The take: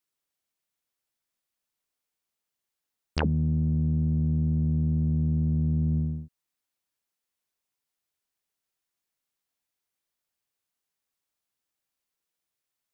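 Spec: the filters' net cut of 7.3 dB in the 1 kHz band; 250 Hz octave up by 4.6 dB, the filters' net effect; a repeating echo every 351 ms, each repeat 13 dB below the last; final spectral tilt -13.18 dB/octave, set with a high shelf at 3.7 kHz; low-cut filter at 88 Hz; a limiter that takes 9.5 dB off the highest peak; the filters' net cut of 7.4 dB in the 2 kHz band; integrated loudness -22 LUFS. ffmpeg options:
-af "highpass=88,equalizer=f=250:t=o:g=7.5,equalizer=f=1000:t=o:g=-8.5,equalizer=f=2000:t=o:g=-6,highshelf=f=3700:g=-4,alimiter=limit=0.075:level=0:latency=1,aecho=1:1:351|702|1053:0.224|0.0493|0.0108,volume=2.51"

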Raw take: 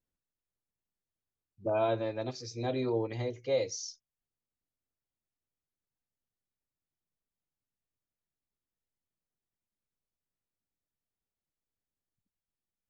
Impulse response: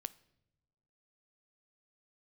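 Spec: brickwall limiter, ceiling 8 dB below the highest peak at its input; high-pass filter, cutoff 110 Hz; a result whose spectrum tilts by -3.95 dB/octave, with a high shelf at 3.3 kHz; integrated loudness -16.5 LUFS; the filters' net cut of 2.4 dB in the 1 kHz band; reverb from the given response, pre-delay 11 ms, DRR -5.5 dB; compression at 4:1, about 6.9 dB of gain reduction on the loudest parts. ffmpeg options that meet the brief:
-filter_complex "[0:a]highpass=110,equalizer=f=1000:t=o:g=-4.5,highshelf=f=3300:g=7.5,acompressor=threshold=0.02:ratio=4,alimiter=level_in=3.16:limit=0.0631:level=0:latency=1,volume=0.316,asplit=2[s0][s1];[1:a]atrim=start_sample=2205,adelay=11[s2];[s1][s2]afir=irnorm=-1:irlink=0,volume=2.66[s3];[s0][s3]amix=inputs=2:normalize=0,volume=9.44"

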